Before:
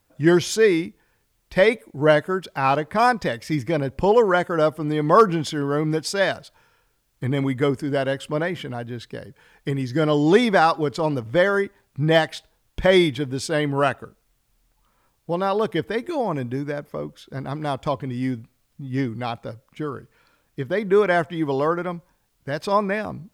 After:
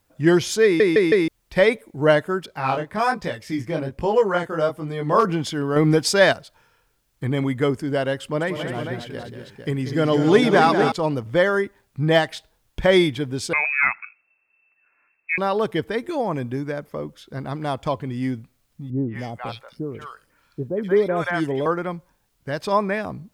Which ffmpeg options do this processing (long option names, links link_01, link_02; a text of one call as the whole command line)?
ffmpeg -i in.wav -filter_complex "[0:a]asettb=1/sr,asplit=3[link_01][link_02][link_03];[link_01]atrim=end=2.464[link_04];[link_02]atrim=start=2.46:end=5.25,asetpts=PTS-STARTPTS,afade=type=in:duration=0.004:curve=qsin,afade=type=out:start_time=2.786:duration=0.004:curve=qsin,flanger=delay=18:depth=7.3:speed=1.2[link_05];[link_03]atrim=start=5.246[link_06];[link_04][link_05]acrossfade=duration=0.004:curve1=hsin:curve2=qsin[link_07];[link_07][link_06]acrossfade=duration=0.004:curve1=qsin:curve2=hsin,asettb=1/sr,asplit=3[link_08][link_09][link_10];[link_08]atrim=end=5.764[link_11];[link_09]atrim=start=5.76:end=6.33,asetpts=PTS-STARTPTS,afade=type=in:duration=0.004:curve=qsin,afade=type=out:start_time=0.566:duration=0.004:curve=qsin,acontrast=56[link_12];[link_10]atrim=start=6.326[link_13];[link_11][link_12]acrossfade=duration=0.004:curve1=hsin:curve2=qsin[link_14];[link_14][link_13]acrossfade=duration=0.004:curve1=qsin:curve2=hsin,asettb=1/sr,asplit=3[link_15][link_16][link_17];[link_15]atrim=end=8.224[link_18];[link_16]atrim=start=8.22:end=10.92,asetpts=PTS-STARTPTS,afade=type=in:duration=0.004:curve=qsin,afade=type=out:start_time=2.696:duration=0.004:curve=qsin,aecho=1:1:186|248|454:0.355|0.335|0.422,atrim=end_sample=119070[link_19];[link_17]atrim=start=10.916[link_20];[link_18][link_19]acrossfade=duration=0.004:curve1=hsin:curve2=qsin[link_21];[link_21][link_20]acrossfade=duration=0.004:curve1=qsin:curve2=hsin,asettb=1/sr,asplit=3[link_22][link_23][link_24];[link_22]atrim=end=13.534[link_25];[link_23]atrim=start=13.53:end=15.38,asetpts=PTS-STARTPTS,afade=type=in:duration=0.004:curve=qsin,afade=type=out:start_time=1.846:duration=0.004:curve=qsin,lowpass=frequency=2300:width_type=q:width=0.5098,lowpass=frequency=2300:width_type=q:width=0.6013,lowpass=frequency=2300:width_type=q:width=0.9,lowpass=frequency=2300:width_type=q:width=2.563,afreqshift=-2700[link_26];[link_24]atrim=start=15.376[link_27];[link_25][link_26]acrossfade=duration=0.004:curve1=hsin:curve2=qsin[link_28];[link_28][link_27]acrossfade=duration=0.004:curve1=qsin:curve2=hsin,asettb=1/sr,asplit=3[link_29][link_30][link_31];[link_29]atrim=end=18.904[link_32];[link_30]atrim=start=18.9:end=21.66,asetpts=PTS-STARTPTS,afade=type=in:duration=0.004:curve=qsin,afade=type=out:start_time=2.756:duration=0.004:curve=qsin,acrossover=split=720|2400[link_33][link_34][link_35];[link_34]adelay=180[link_36];[link_35]adelay=250[link_37];[link_33][link_36][link_37]amix=inputs=3:normalize=0,atrim=end_sample=121716[link_38];[link_31]atrim=start=21.656[link_39];[link_32][link_38]acrossfade=duration=0.004:curve1=hsin:curve2=qsin[link_40];[link_40][link_39]acrossfade=duration=0.004:curve1=qsin:curve2=hsin,asplit=5[link_41][link_42][link_43][link_44][link_45];[link_41]atrim=end=0.802[link_46];[link_42]atrim=start=0.638:end=0.802[link_47];[link_43]atrim=start=0.638:end=0.802[link_48];[link_44]atrim=start=0.638:end=0.802[link_49];[link_45]atrim=start=1.278[link_50];[link_46][link_47]acrossfade=duration=0.004:curve1=hsin:curve2=hsin[link_51];[link_51][link_48]acrossfade=duration=0.004:curve1=hsin:curve2=hsin[link_52];[link_52][link_49]acrossfade=duration=0.004:curve1=hsin:curve2=hsin[link_53];[link_53][link_50]acrossfade=duration=0.004:curve1=hsin:curve2=hsin" out.wav